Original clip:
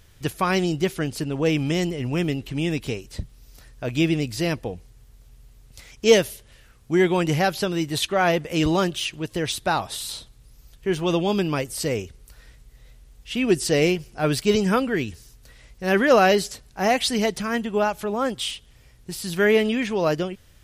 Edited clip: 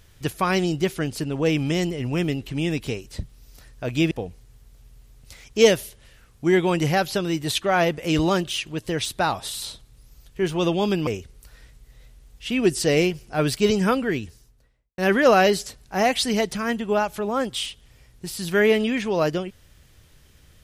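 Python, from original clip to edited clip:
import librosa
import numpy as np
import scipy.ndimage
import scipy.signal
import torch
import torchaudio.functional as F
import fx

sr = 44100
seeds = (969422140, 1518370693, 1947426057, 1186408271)

y = fx.studio_fade_out(x, sr, start_s=14.86, length_s=0.97)
y = fx.edit(y, sr, fx.cut(start_s=4.11, length_s=0.47),
    fx.cut(start_s=11.54, length_s=0.38), tone=tone)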